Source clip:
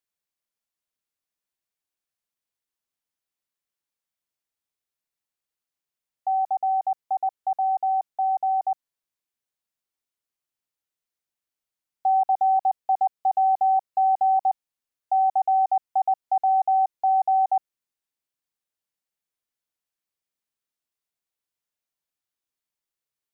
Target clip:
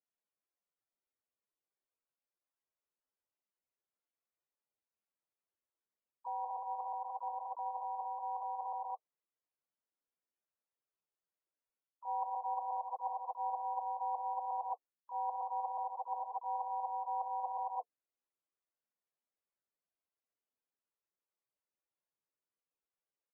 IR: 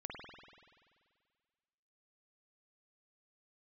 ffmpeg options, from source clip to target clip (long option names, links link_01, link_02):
-filter_complex "[0:a]agate=range=-20dB:threshold=-18dB:ratio=16:detection=peak,bandreject=frequency=730:width=12,aecho=1:1:182|184|219:0.631|0.237|0.531,areverse,acompressor=threshold=-53dB:ratio=5,areverse,asplit=4[link_01][link_02][link_03][link_04];[link_02]asetrate=29433,aresample=44100,atempo=1.49831,volume=-17dB[link_05];[link_03]asetrate=52444,aresample=44100,atempo=0.840896,volume=-17dB[link_06];[link_04]asetrate=55563,aresample=44100,atempo=0.793701,volume=-1dB[link_07];[link_01][link_05][link_06][link_07]amix=inputs=4:normalize=0,equalizer=frequency=530:width=0.37:gain=10,volume=3.5dB" -ar 22050 -c:a libmp3lame -b:a 8k